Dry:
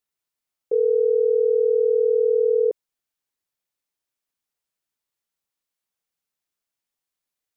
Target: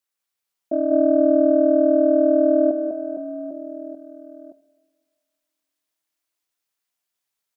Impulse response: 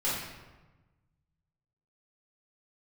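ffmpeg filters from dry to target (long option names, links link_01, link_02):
-filter_complex "[0:a]acontrast=20,aeval=exprs='val(0)*sin(2*PI*160*n/s)':channel_layout=same,lowshelf=frequency=380:gain=-8.5,aecho=1:1:200|460|798|1237|1809:0.631|0.398|0.251|0.158|0.1,asplit=2[link_01][link_02];[1:a]atrim=start_sample=2205,asetrate=30870,aresample=44100[link_03];[link_02][link_03]afir=irnorm=-1:irlink=0,volume=-25dB[link_04];[link_01][link_04]amix=inputs=2:normalize=0"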